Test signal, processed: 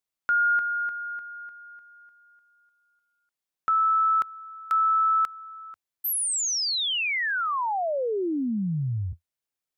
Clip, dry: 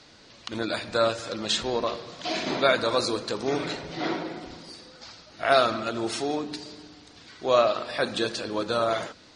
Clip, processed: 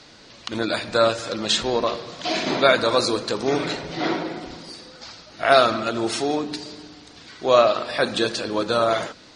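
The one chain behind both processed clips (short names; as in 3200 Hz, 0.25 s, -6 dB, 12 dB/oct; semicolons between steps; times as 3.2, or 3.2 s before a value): bell 85 Hz -6.5 dB 0.26 oct; gain +5 dB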